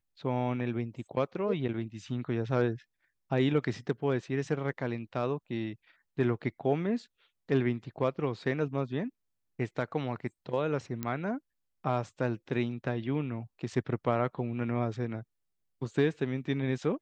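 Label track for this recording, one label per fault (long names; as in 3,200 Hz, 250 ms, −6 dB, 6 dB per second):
11.030000	11.030000	click −19 dBFS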